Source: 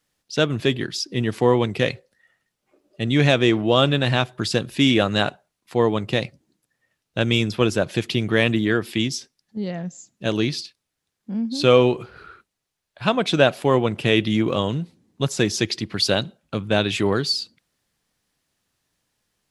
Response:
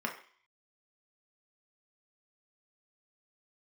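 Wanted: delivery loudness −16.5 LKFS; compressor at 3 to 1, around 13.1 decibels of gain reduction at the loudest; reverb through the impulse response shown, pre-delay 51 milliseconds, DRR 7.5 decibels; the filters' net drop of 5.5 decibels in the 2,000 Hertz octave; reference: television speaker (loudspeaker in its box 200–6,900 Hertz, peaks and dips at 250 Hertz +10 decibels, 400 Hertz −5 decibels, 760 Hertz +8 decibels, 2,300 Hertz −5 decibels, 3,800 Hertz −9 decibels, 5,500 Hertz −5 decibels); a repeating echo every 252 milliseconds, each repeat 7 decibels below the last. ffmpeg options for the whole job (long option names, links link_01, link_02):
-filter_complex "[0:a]equalizer=frequency=2000:width_type=o:gain=-5,acompressor=threshold=-28dB:ratio=3,aecho=1:1:252|504|756|1008|1260:0.447|0.201|0.0905|0.0407|0.0183,asplit=2[link_01][link_02];[1:a]atrim=start_sample=2205,adelay=51[link_03];[link_02][link_03]afir=irnorm=-1:irlink=0,volume=-13dB[link_04];[link_01][link_04]amix=inputs=2:normalize=0,highpass=frequency=200:width=0.5412,highpass=frequency=200:width=1.3066,equalizer=frequency=250:width_type=q:width=4:gain=10,equalizer=frequency=400:width_type=q:width=4:gain=-5,equalizer=frequency=760:width_type=q:width=4:gain=8,equalizer=frequency=2300:width_type=q:width=4:gain=-5,equalizer=frequency=3800:width_type=q:width=4:gain=-9,equalizer=frequency=5500:width_type=q:width=4:gain=-5,lowpass=frequency=6900:width=0.5412,lowpass=frequency=6900:width=1.3066,volume=12.5dB"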